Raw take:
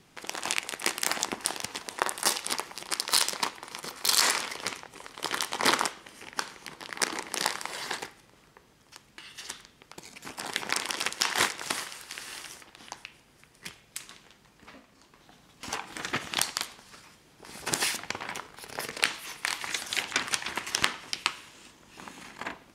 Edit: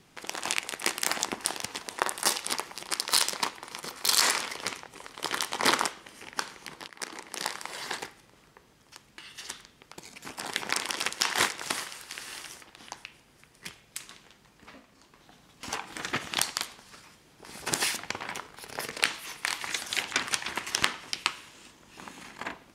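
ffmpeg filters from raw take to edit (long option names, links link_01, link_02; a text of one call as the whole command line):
ffmpeg -i in.wav -filter_complex "[0:a]asplit=2[link_01][link_02];[link_01]atrim=end=6.88,asetpts=PTS-STARTPTS,afade=type=out:start_time=6.876:duration=0.004:curve=hsin:silence=0.237137[link_03];[link_02]atrim=start=6.88,asetpts=PTS-STARTPTS,afade=type=in:duration=1.16:silence=0.237137[link_04];[link_03][link_04]concat=n=2:v=0:a=1" out.wav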